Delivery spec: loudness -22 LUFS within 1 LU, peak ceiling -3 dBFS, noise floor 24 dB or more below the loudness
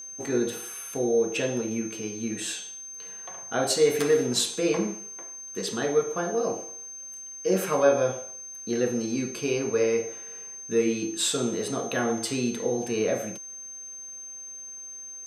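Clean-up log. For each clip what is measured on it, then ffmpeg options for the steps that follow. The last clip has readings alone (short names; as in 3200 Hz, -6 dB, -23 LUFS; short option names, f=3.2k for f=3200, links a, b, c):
steady tone 6300 Hz; tone level -38 dBFS; loudness -28.0 LUFS; peak -8.5 dBFS; loudness target -22.0 LUFS
-> -af "bandreject=f=6.3k:w=30"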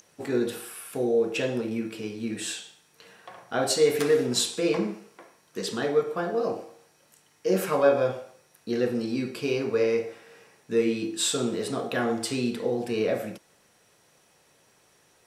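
steady tone none; loudness -27.0 LUFS; peak -9.0 dBFS; loudness target -22.0 LUFS
-> -af "volume=5dB"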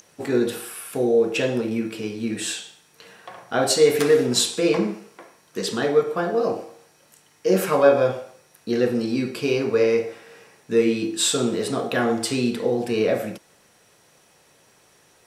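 loudness -22.0 LUFS; peak -4.0 dBFS; noise floor -58 dBFS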